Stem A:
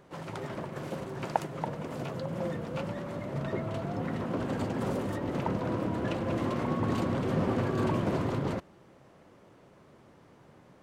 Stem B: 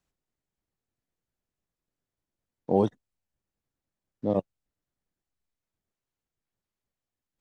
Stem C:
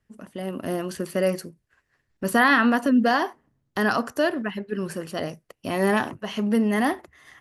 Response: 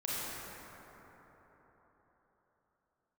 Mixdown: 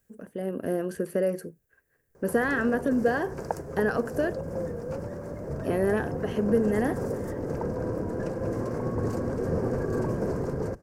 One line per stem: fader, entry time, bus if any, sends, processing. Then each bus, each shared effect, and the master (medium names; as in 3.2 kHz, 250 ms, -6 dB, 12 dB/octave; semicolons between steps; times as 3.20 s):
-2.5 dB, 2.15 s, no bus, no send, octave divider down 1 oct, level -2 dB; resonant high shelf 4.2 kHz +7 dB, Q 3
-0.5 dB, 0.00 s, bus A, no send, tilt EQ +3.5 dB/octave; peak limiter -23 dBFS, peak gain reduction 8.5 dB; compressor with a negative ratio -38 dBFS, ratio -0.5
-2.0 dB, 0.00 s, muted 4.33–5.54 s, bus A, no send, none
bus A: 0.0 dB, peaking EQ 1 kHz -5 dB; compression 3:1, threshold -25 dBFS, peak gain reduction 6.5 dB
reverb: none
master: peaking EQ 4 kHz -12 dB 1.9 oct; small resonant body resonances 460/1600 Hz, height 11 dB, ringing for 30 ms